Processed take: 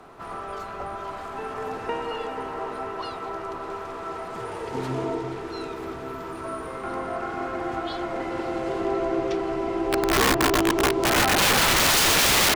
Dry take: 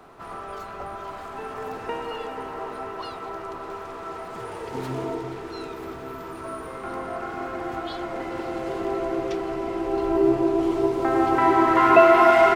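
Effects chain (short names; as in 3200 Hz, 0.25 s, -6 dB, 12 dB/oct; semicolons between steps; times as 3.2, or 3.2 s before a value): treble ducked by the level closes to 2400 Hz, closed at -13 dBFS; wrapped overs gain 16 dB; gain +1.5 dB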